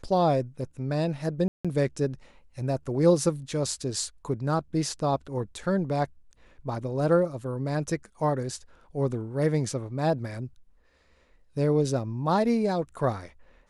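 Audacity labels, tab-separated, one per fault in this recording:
1.480000	1.650000	drop-out 166 ms

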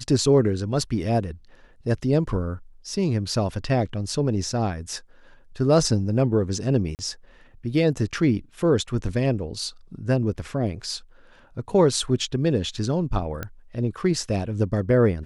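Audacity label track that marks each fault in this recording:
6.950000	6.990000	drop-out 39 ms
13.430000	13.430000	click −15 dBFS

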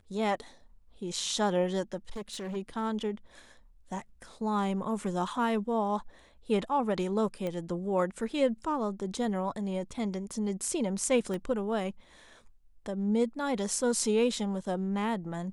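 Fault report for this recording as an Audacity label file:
2.100000	2.570000	clipping −34 dBFS
7.470000	7.470000	click −22 dBFS
11.340000	11.340000	click −24 dBFS

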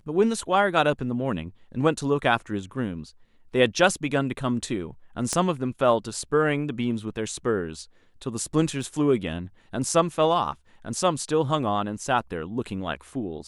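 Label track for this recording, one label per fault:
5.330000	5.330000	click −12 dBFS
8.830000	8.830000	drop-out 2.3 ms

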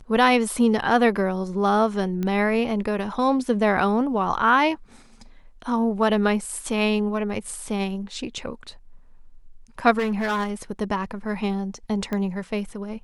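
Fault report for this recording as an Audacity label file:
2.230000	2.230000	click −16 dBFS
9.980000	10.500000	clipping −20.5 dBFS
12.130000	12.130000	click −16 dBFS

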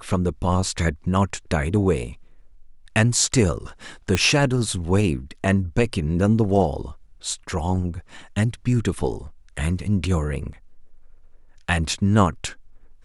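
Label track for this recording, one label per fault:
4.150000	4.150000	click −6 dBFS

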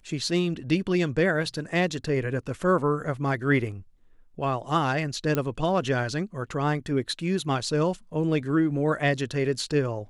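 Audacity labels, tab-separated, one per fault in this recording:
5.350000	5.350000	click −12 dBFS

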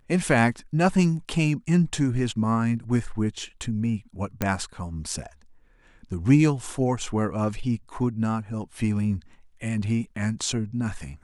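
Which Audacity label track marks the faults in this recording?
4.420000	4.420000	click −10 dBFS

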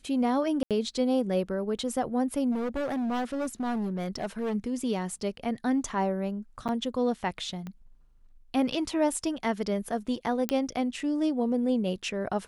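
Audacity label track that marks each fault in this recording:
0.630000	0.710000	drop-out 77 ms
2.510000	4.550000	clipping −27 dBFS
6.680000	6.690000	drop-out 8.1 ms
7.670000	7.670000	click −26 dBFS
10.490000	10.490000	click −10 dBFS

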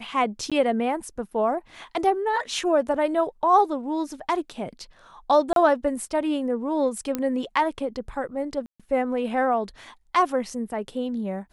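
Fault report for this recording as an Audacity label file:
0.500000	0.520000	drop-out 16 ms
5.530000	5.560000	drop-out 32 ms
7.150000	7.150000	click −12 dBFS
8.660000	8.800000	drop-out 136 ms

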